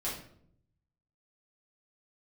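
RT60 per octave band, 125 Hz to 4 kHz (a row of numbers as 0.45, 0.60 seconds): 1.3, 0.90, 0.75, 0.55, 0.50, 0.45 seconds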